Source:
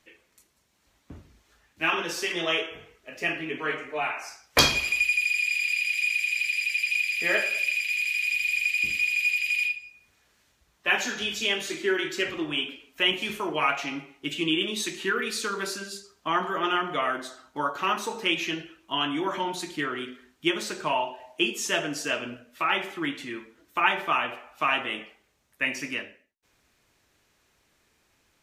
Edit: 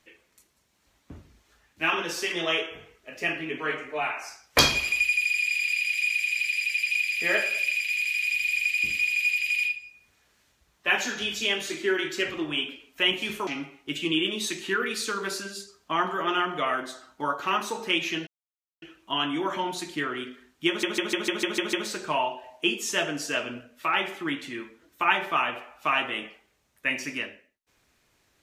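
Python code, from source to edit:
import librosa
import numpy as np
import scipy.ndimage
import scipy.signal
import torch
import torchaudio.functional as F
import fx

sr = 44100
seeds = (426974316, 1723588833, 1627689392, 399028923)

y = fx.edit(x, sr, fx.cut(start_s=13.47, length_s=0.36),
    fx.insert_silence(at_s=18.63, length_s=0.55),
    fx.stutter(start_s=20.49, slice_s=0.15, count=8), tone=tone)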